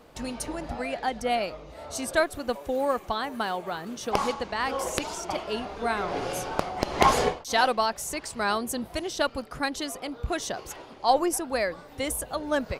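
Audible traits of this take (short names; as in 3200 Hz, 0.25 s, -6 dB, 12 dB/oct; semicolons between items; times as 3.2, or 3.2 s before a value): noise floor -47 dBFS; spectral tilt -3.0 dB/oct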